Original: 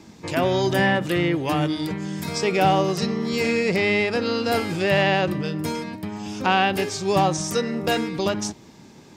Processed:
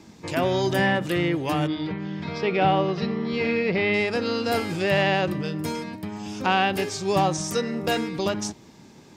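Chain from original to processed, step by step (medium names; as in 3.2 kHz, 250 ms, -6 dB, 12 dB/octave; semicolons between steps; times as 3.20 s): 1.67–3.94 s: low-pass 3.9 kHz 24 dB/octave; trim -2 dB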